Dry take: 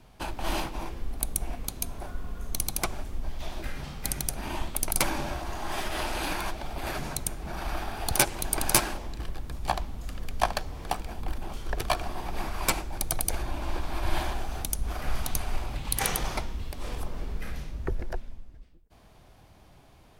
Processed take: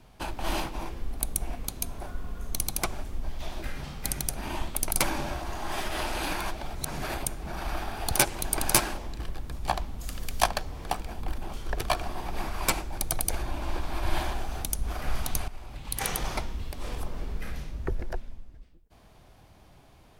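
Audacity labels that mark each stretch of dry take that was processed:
6.750000	7.260000	reverse
9.990000	10.460000	high shelf 4500 Hz -> 3000 Hz +11 dB
15.480000	16.330000	fade in, from -15 dB

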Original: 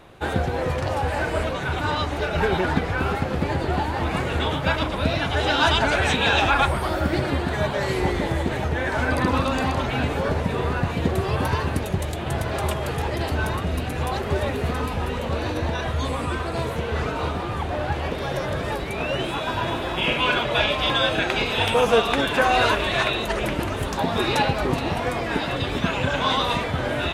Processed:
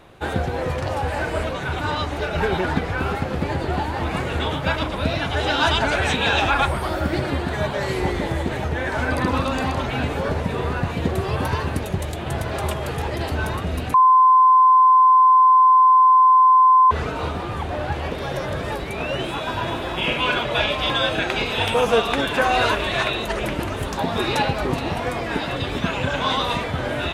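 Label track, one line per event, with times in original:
13.940000	16.910000	bleep 1030 Hz -9.5 dBFS

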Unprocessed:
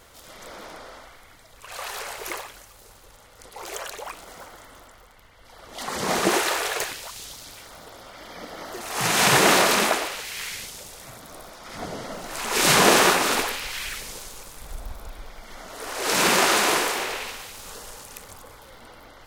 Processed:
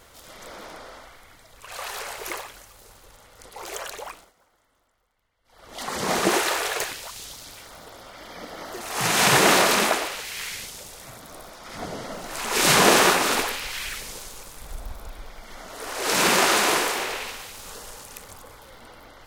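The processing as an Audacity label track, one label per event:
4.030000	5.730000	dip -21 dB, fades 0.29 s

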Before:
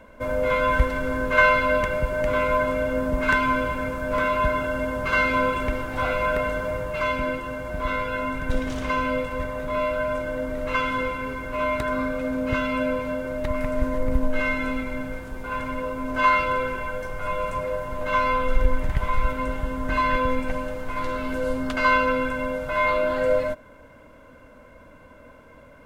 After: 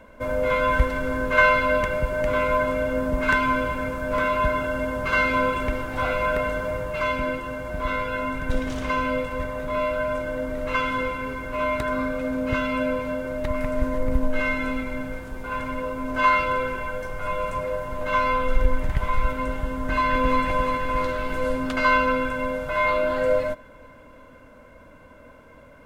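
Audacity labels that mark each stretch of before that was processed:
19.800000	20.420000	echo throw 0.35 s, feedback 70%, level -3 dB

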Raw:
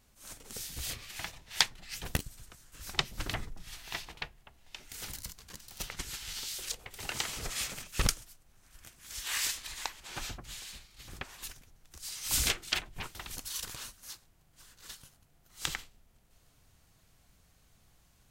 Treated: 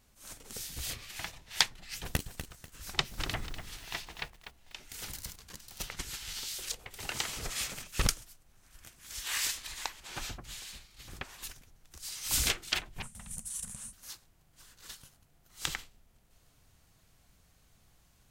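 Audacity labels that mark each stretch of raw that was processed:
1.960000	5.360000	lo-fi delay 0.245 s, feedback 35%, word length 8-bit, level -9 dB
13.020000	13.930000	EQ curve 120 Hz 0 dB, 220 Hz +9 dB, 320 Hz -27 dB, 500 Hz -8 dB, 1400 Hz -11 dB, 1900 Hz -10 dB, 4700 Hz -15 dB, 9300 Hz +9 dB, 14000 Hz -16 dB

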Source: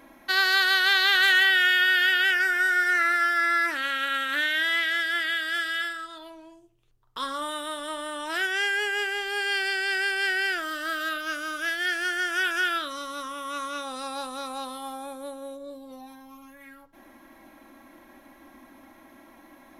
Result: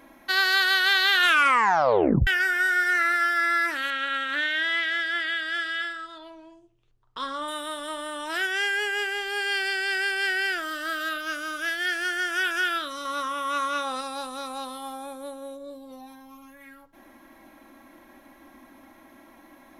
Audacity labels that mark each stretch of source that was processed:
1.160000	1.160000	tape stop 1.11 s
3.900000	7.480000	air absorption 71 m
13.050000	14.010000	bell 1300 Hz +6.5 dB 3 oct

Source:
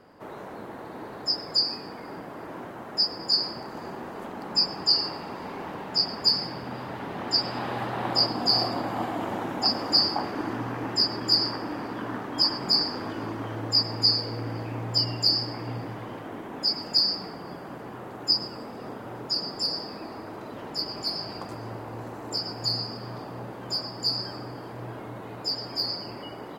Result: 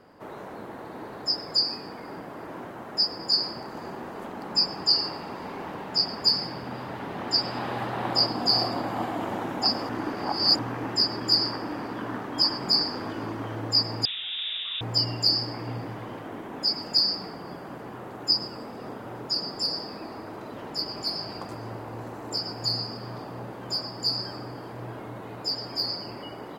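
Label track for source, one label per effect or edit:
9.890000	10.590000	reverse
14.050000	14.810000	inverted band carrier 3700 Hz

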